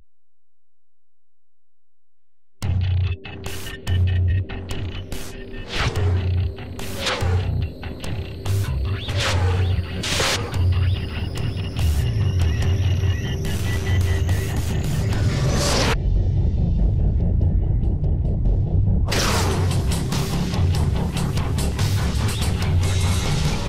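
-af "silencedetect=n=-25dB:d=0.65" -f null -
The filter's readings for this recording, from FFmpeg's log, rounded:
silence_start: 0.00
silence_end: 2.62 | silence_duration: 2.62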